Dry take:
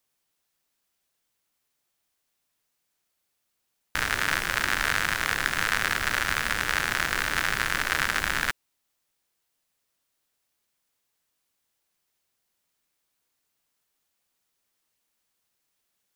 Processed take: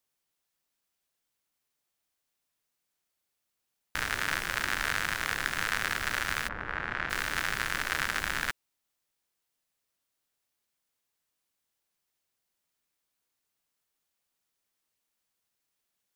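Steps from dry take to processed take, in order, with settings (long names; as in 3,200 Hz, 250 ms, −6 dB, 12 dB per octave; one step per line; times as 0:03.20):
0:06.47–0:07.09: low-pass filter 1,100 Hz → 2,600 Hz 12 dB per octave
level −5 dB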